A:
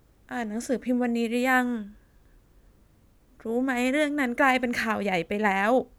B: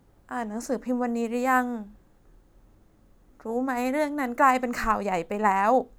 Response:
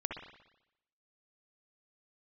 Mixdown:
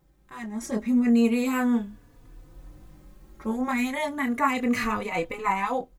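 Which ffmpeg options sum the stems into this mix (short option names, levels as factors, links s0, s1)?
-filter_complex "[0:a]dynaudnorm=f=200:g=9:m=3.98,alimiter=limit=0.237:level=0:latency=1,volume=0.668[s0];[1:a]dynaudnorm=f=250:g=5:m=5.96,flanger=delay=20:depth=5.8:speed=0.35,adelay=0.9,volume=0.631[s1];[s0][s1]amix=inputs=2:normalize=0,asplit=2[s2][s3];[s3]adelay=3.4,afreqshift=0.34[s4];[s2][s4]amix=inputs=2:normalize=1"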